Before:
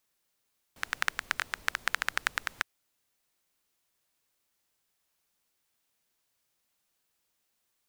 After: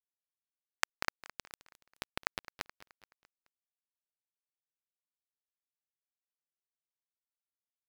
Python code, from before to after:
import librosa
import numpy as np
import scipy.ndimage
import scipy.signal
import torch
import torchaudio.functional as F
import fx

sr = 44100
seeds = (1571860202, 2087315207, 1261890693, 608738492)

y = fx.low_shelf(x, sr, hz=280.0, db=-7.5)
y = fx.env_lowpass_down(y, sr, base_hz=1300.0, full_db=-37.5)
y = fx.step_gate(y, sr, bpm=152, pattern='x.x.x.xx', floor_db=-60.0, edge_ms=4.5)
y = fx.power_curve(y, sr, exponent=2.0)
y = np.where(np.abs(y) >= 10.0 ** (-26.5 / 20.0), y, 0.0)
y = fx.echo_feedback(y, sr, ms=213, feedback_pct=49, wet_db=-18.5)
y = F.gain(torch.from_numpy(y), 7.0).numpy()